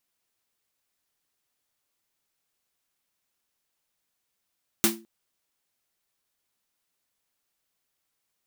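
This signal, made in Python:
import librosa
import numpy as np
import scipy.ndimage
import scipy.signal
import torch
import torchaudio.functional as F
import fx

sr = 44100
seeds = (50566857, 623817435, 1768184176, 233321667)

y = fx.drum_snare(sr, seeds[0], length_s=0.21, hz=220.0, second_hz=340.0, noise_db=5.0, noise_from_hz=670.0, decay_s=0.36, noise_decay_s=0.21)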